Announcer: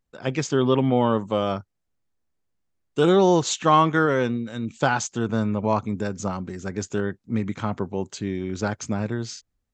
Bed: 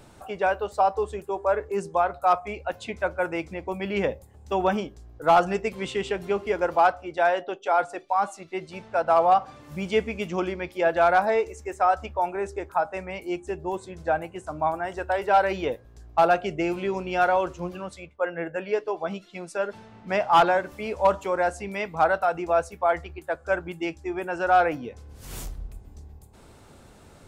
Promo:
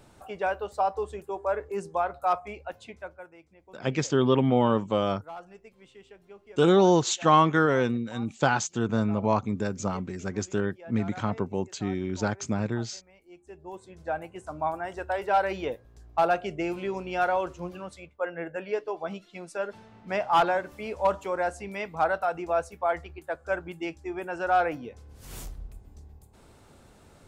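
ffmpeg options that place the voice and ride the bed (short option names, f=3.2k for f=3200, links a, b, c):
-filter_complex "[0:a]adelay=3600,volume=-2dB[a];[1:a]volume=15dB,afade=t=out:st=2.36:d=0.94:silence=0.112202,afade=t=in:st=13.29:d=1.17:silence=0.105925[b];[a][b]amix=inputs=2:normalize=0"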